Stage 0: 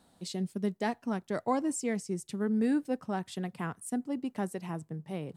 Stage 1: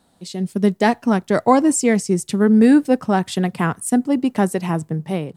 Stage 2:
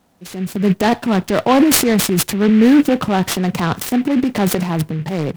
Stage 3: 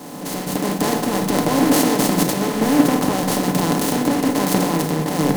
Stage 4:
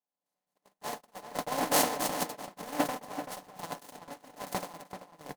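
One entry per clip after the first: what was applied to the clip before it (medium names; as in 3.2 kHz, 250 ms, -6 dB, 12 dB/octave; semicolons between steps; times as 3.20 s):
level rider gain up to 12 dB; trim +4 dB
peaking EQ 4.1 kHz -5.5 dB 0.77 oct; transient shaper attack -3 dB, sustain +12 dB; delay time shaken by noise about 1.9 kHz, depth 0.048 ms; trim +1.5 dB
spectral levelling over time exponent 0.2; reverberation RT60 1.6 s, pre-delay 7 ms, DRR 3.5 dB; three bands expanded up and down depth 100%; trim -14 dB
resonant low shelf 470 Hz -8.5 dB, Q 1.5; gate -18 dBFS, range -56 dB; echo from a far wall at 66 m, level -9 dB; trim -5 dB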